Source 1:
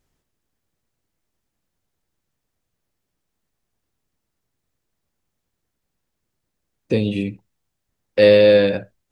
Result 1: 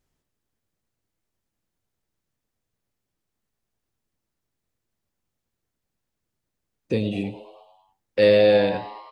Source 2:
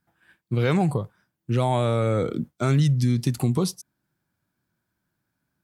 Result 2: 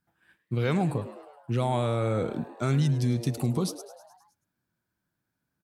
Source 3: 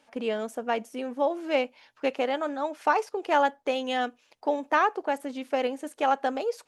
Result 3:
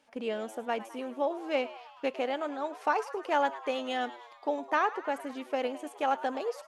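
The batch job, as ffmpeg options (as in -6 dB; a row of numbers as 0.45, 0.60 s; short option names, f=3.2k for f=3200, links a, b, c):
-filter_complex "[0:a]asplit=7[a][b][c][d][e][f][g];[b]adelay=105,afreqshift=110,volume=-16dB[h];[c]adelay=210,afreqshift=220,volume=-20.3dB[i];[d]adelay=315,afreqshift=330,volume=-24.6dB[j];[e]adelay=420,afreqshift=440,volume=-28.9dB[k];[f]adelay=525,afreqshift=550,volume=-33.2dB[l];[g]adelay=630,afreqshift=660,volume=-37.5dB[m];[a][h][i][j][k][l][m]amix=inputs=7:normalize=0,volume=-4.5dB"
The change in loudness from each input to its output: -5.0, -4.5, -4.5 LU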